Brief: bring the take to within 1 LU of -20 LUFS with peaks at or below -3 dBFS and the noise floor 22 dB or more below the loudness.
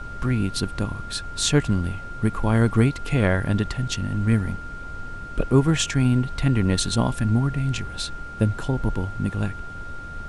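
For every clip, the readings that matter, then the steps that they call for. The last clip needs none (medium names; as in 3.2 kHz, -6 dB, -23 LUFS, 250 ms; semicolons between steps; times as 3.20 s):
steady tone 1.4 kHz; tone level -36 dBFS; noise floor -36 dBFS; noise floor target -46 dBFS; loudness -23.5 LUFS; peak level -5.5 dBFS; loudness target -20.0 LUFS
-> band-stop 1.4 kHz, Q 30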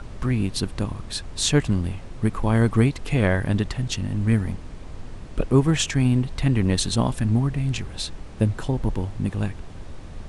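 steady tone not found; noise floor -38 dBFS; noise floor target -46 dBFS
-> noise print and reduce 8 dB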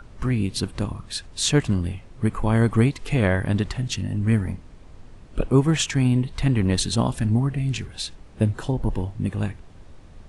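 noise floor -46 dBFS; loudness -23.5 LUFS; peak level -5.5 dBFS; loudness target -20.0 LUFS
-> trim +3.5 dB; peak limiter -3 dBFS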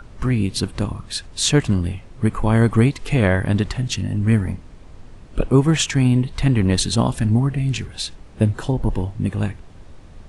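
loudness -20.0 LUFS; peak level -3.0 dBFS; noise floor -42 dBFS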